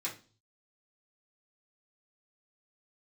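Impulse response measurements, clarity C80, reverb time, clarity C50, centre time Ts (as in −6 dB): 17.5 dB, 0.35 s, 11.0 dB, 19 ms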